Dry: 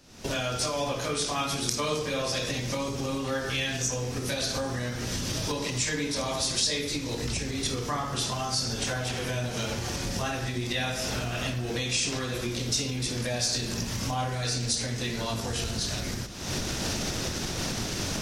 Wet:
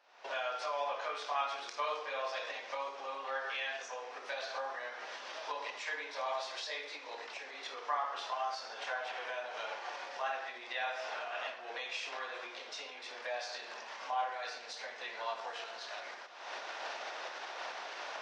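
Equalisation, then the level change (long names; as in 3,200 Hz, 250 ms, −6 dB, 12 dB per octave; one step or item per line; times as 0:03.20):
high-pass filter 710 Hz 24 dB per octave
head-to-tape spacing loss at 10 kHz 42 dB
notch filter 1,300 Hz, Q 29
+3.0 dB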